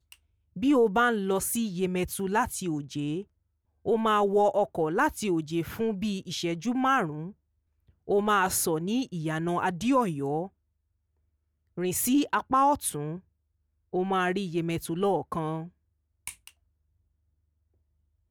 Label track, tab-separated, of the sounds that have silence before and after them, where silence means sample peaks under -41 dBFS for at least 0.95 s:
11.770000	16.480000	sound